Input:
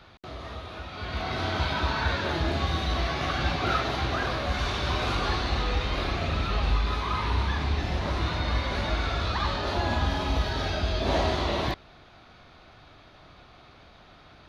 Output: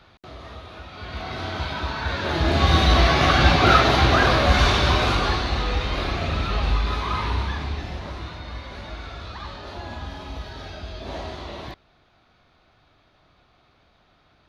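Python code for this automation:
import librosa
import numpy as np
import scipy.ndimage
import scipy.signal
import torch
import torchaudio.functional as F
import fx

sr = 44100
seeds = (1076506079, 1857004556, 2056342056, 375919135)

y = fx.gain(x, sr, db=fx.line((2.02, -1.0), (2.75, 11.0), (4.64, 11.0), (5.49, 3.0), (7.2, 3.0), (8.41, -8.0)))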